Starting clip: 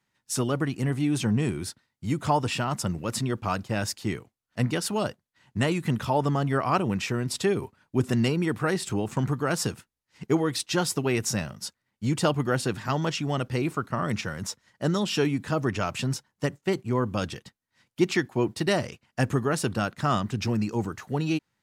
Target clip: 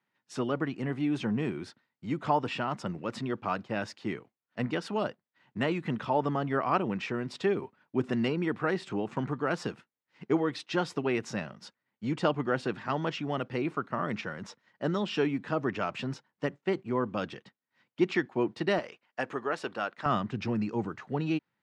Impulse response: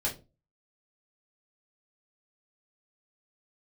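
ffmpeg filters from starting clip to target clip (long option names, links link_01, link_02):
-af "asetnsamples=nb_out_samples=441:pad=0,asendcmd='18.79 highpass f 440;20.06 highpass f 140',highpass=190,lowpass=3000,volume=-2.5dB"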